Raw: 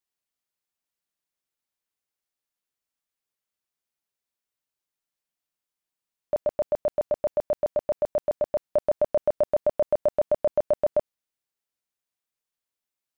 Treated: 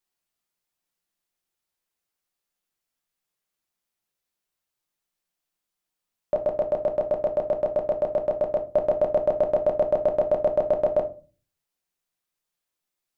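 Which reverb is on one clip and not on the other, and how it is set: shoebox room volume 190 m³, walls furnished, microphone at 0.9 m; gain +2.5 dB

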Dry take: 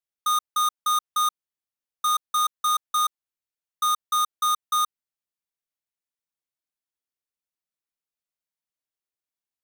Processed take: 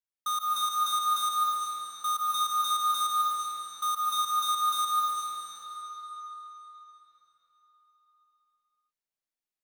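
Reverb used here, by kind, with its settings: digital reverb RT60 4.4 s, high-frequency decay 0.9×, pre-delay 0.11 s, DRR -4.5 dB; gain -7.5 dB

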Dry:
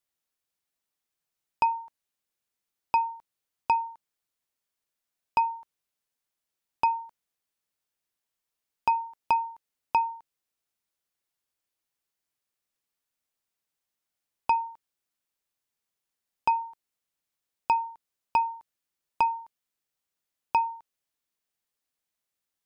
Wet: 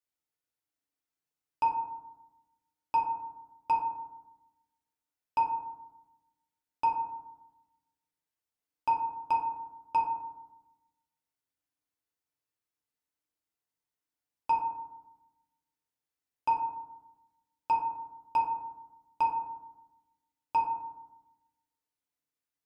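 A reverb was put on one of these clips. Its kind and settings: FDN reverb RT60 1 s, low-frequency decay 1.35×, high-frequency decay 0.35×, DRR -3.5 dB; gain -10 dB

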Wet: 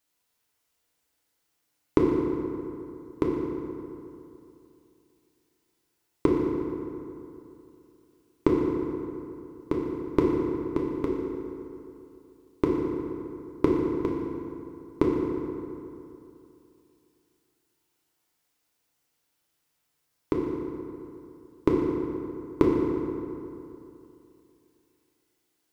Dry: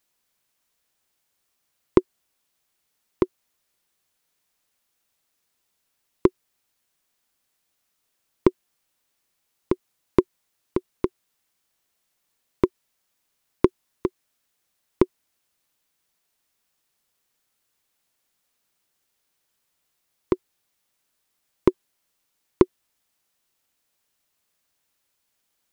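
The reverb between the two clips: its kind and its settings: FDN reverb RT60 2.8 s, high-frequency decay 0.55×, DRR -3 dB; gain -5 dB

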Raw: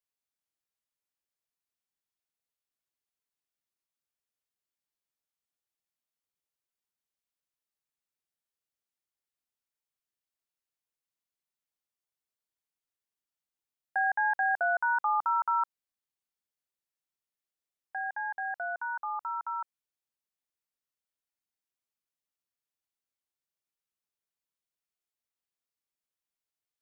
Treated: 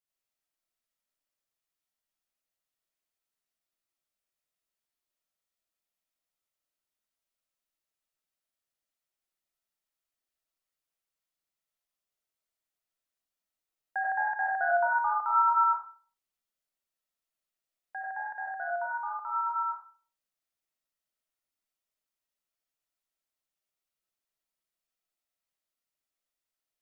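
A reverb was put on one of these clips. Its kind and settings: digital reverb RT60 0.44 s, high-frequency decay 0.6×, pre-delay 50 ms, DRR -4 dB; gain -3 dB

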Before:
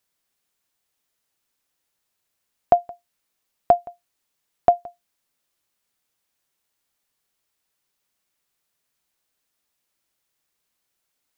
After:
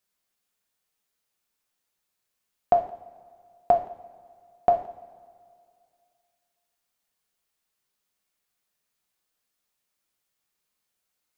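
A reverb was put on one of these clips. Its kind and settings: two-slope reverb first 0.52 s, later 2.3 s, from -18 dB, DRR 2.5 dB; gain -5 dB

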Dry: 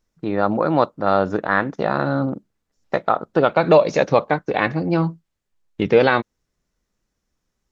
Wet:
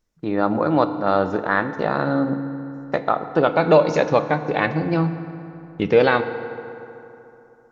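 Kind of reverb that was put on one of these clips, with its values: FDN reverb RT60 3.1 s, high-frequency decay 0.55×, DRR 9.5 dB; gain -1.5 dB

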